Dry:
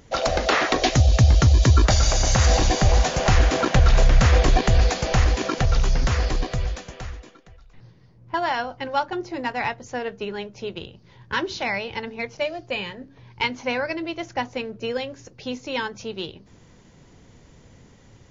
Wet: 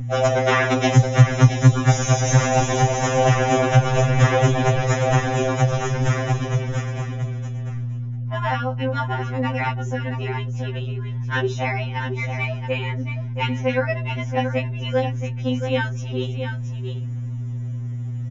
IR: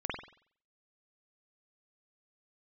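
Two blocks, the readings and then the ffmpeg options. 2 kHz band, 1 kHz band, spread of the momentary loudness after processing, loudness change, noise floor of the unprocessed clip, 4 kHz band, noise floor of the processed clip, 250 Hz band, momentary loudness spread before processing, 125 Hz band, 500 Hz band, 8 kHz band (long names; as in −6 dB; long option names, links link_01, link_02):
+1.5 dB, +2.5 dB, 12 LU, +0.5 dB, −52 dBFS, −3.5 dB, −28 dBFS, +4.0 dB, 16 LU, +4.0 dB, +4.0 dB, can't be measured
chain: -af "asuperstop=centerf=4500:order=20:qfactor=7.5,equalizer=frequency=4400:width_type=o:width=0.65:gain=-11.5,aecho=1:1:675:0.398,aeval=exprs='val(0)+0.0501*(sin(2*PI*60*n/s)+sin(2*PI*2*60*n/s)/2+sin(2*PI*3*60*n/s)/3+sin(2*PI*4*60*n/s)/4+sin(2*PI*5*60*n/s)/5)':channel_layout=same,alimiter=level_in=6.5dB:limit=-1dB:release=50:level=0:latency=1,afftfilt=real='re*2.45*eq(mod(b,6),0)':imag='im*2.45*eq(mod(b,6),0)':win_size=2048:overlap=0.75,volume=-2dB"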